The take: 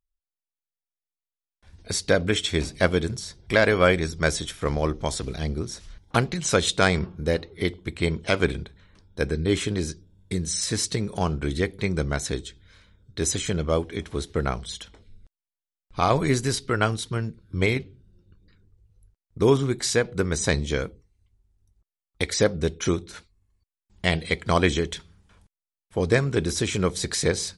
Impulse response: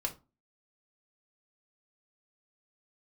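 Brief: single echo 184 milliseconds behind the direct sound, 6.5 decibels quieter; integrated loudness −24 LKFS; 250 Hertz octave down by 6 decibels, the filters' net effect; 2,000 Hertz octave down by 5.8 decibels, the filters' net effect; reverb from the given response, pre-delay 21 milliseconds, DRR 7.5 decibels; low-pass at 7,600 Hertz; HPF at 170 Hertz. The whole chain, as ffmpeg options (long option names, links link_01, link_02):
-filter_complex "[0:a]highpass=170,lowpass=7600,equalizer=frequency=250:width_type=o:gain=-7,equalizer=frequency=2000:width_type=o:gain=-7.5,aecho=1:1:184:0.473,asplit=2[link_01][link_02];[1:a]atrim=start_sample=2205,adelay=21[link_03];[link_02][link_03]afir=irnorm=-1:irlink=0,volume=-10dB[link_04];[link_01][link_04]amix=inputs=2:normalize=0,volume=3.5dB"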